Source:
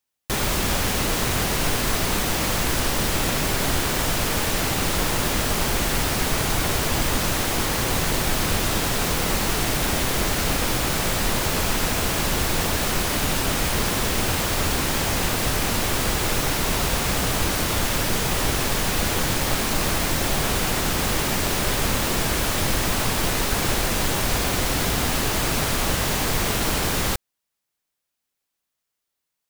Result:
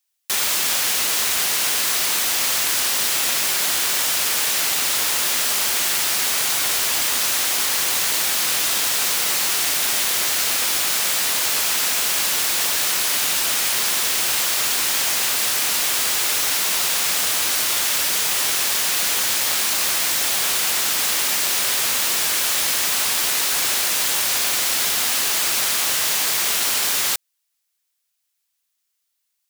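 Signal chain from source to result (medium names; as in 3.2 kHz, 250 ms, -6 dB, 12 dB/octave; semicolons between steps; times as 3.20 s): high-pass 1.2 kHz 6 dB/octave; treble shelf 2.3 kHz +8 dB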